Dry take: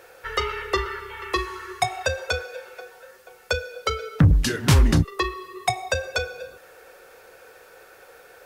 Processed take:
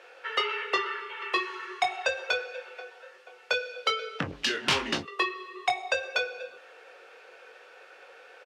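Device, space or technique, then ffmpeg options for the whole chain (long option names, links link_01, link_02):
intercom: -filter_complex "[0:a]asettb=1/sr,asplit=3[link_01][link_02][link_03];[link_01]atrim=end=3.534[link_04];[link_02]atrim=start=3.53:end=5,asetpts=PTS-STARTPTS,afade=type=in:duration=0.004:curve=qsin,afade=type=out:start_time=1.466:duration=0.004:curve=qsin,equalizer=frequency=4500:width_type=o:width=1.6:gain=3.5[link_05];[link_03]atrim=start=4.996[link_06];[link_04][link_05]acrossfade=duration=0.004:curve1=hsin:curve2=qsin[link_07];[link_07][link_06]acrossfade=duration=0.004:curve1=qsin:curve2=hsin,highpass=420,lowpass=4700,equalizer=frequency=2800:width_type=o:width=0.54:gain=7,asoftclip=type=tanh:threshold=-10dB,asplit=2[link_08][link_09];[link_09]adelay=22,volume=-7dB[link_10];[link_08][link_10]amix=inputs=2:normalize=0,volume=-3dB"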